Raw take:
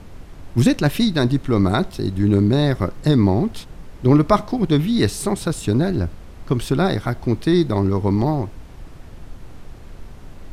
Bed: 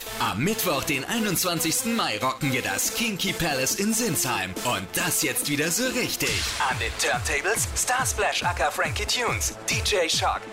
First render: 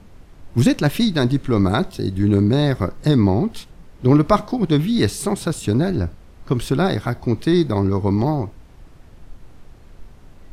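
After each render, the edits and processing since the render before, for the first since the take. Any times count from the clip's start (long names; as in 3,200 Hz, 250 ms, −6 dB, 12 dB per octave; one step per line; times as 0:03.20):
noise reduction from a noise print 6 dB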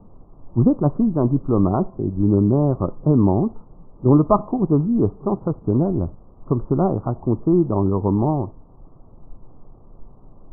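Butterworth low-pass 1,200 Hz 72 dB per octave
parametric band 61 Hz −12 dB 0.53 octaves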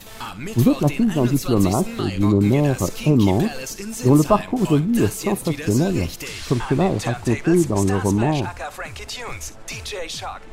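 mix in bed −7 dB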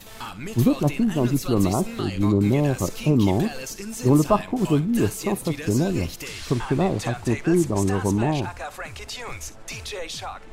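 level −3 dB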